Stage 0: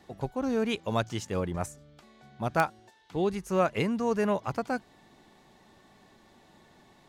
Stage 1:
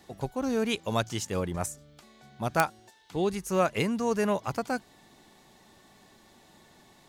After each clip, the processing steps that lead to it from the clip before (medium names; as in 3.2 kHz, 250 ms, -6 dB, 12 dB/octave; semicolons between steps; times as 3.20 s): treble shelf 4.8 kHz +10 dB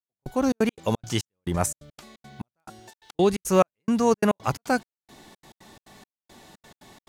trance gate "...xxx.x.xx.xx" 174 bpm -60 dB; trim +7.5 dB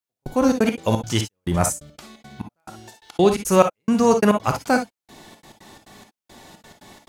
reverberation, pre-delay 3 ms, DRR 5.5 dB; trim +4 dB